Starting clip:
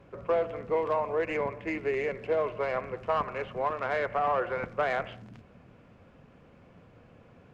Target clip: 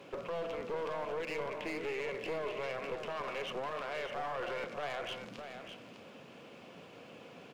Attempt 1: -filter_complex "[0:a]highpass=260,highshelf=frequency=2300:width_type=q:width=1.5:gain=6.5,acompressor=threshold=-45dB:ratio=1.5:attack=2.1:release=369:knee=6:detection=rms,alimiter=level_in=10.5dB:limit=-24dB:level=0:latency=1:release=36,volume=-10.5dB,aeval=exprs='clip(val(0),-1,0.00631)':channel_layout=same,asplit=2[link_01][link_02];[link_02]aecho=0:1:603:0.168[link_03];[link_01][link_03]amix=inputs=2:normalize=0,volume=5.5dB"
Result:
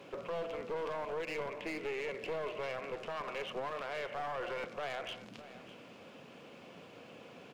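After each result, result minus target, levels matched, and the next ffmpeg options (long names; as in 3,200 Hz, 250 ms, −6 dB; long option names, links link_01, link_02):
echo-to-direct −7.5 dB; downward compressor: peak gain reduction +2.5 dB
-filter_complex "[0:a]highpass=260,highshelf=frequency=2300:width_type=q:width=1.5:gain=6.5,acompressor=threshold=-45dB:ratio=1.5:attack=2.1:release=369:knee=6:detection=rms,alimiter=level_in=10.5dB:limit=-24dB:level=0:latency=1:release=36,volume=-10.5dB,aeval=exprs='clip(val(0),-1,0.00631)':channel_layout=same,asplit=2[link_01][link_02];[link_02]aecho=0:1:603:0.398[link_03];[link_01][link_03]amix=inputs=2:normalize=0,volume=5.5dB"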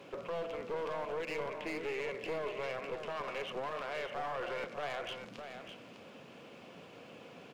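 downward compressor: peak gain reduction +2.5 dB
-filter_complex "[0:a]highpass=260,highshelf=frequency=2300:width_type=q:width=1.5:gain=6.5,acompressor=threshold=-37.5dB:ratio=1.5:attack=2.1:release=369:knee=6:detection=rms,alimiter=level_in=10.5dB:limit=-24dB:level=0:latency=1:release=36,volume=-10.5dB,aeval=exprs='clip(val(0),-1,0.00631)':channel_layout=same,asplit=2[link_01][link_02];[link_02]aecho=0:1:603:0.398[link_03];[link_01][link_03]amix=inputs=2:normalize=0,volume=5.5dB"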